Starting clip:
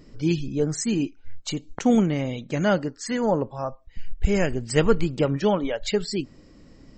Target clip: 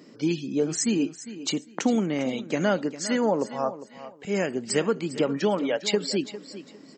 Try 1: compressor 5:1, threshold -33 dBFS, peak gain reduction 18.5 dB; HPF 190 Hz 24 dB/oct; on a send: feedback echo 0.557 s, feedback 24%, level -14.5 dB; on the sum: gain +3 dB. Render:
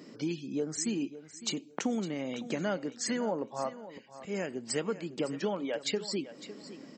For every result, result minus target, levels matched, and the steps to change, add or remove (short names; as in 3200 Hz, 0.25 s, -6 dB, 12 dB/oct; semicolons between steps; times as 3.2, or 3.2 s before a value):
compressor: peak gain reduction +9 dB; echo 0.154 s late
change: compressor 5:1, threshold -22 dBFS, peak gain reduction 10 dB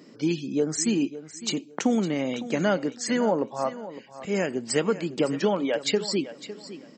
echo 0.154 s late
change: feedback echo 0.403 s, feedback 24%, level -14.5 dB